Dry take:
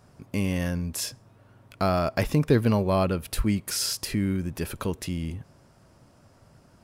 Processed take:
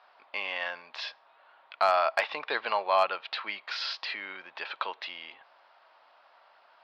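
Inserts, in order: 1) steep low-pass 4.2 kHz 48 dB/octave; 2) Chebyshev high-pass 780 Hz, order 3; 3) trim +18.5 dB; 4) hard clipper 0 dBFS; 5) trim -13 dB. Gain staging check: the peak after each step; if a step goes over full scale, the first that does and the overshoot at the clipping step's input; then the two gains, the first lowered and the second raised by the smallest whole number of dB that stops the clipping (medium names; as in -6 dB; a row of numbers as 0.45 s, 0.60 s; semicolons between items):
-8.5 dBFS, -14.5 dBFS, +4.0 dBFS, 0.0 dBFS, -13.0 dBFS; step 3, 4.0 dB; step 3 +14.5 dB, step 5 -9 dB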